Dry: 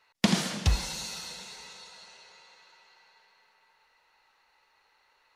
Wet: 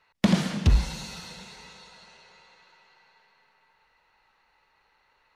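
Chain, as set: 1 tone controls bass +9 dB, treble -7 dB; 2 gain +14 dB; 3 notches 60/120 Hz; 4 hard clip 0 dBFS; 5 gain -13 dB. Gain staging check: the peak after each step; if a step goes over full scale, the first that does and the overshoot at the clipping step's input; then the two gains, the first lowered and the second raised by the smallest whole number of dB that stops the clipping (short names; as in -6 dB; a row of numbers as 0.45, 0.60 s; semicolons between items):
-5.0, +9.0, +8.5, 0.0, -13.0 dBFS; step 2, 8.5 dB; step 2 +5 dB, step 5 -4 dB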